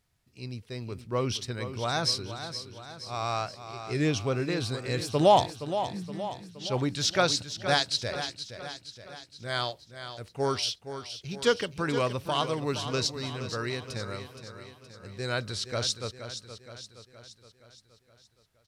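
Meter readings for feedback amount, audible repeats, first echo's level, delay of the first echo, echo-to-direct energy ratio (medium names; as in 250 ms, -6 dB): 54%, 5, -10.5 dB, 470 ms, -9.0 dB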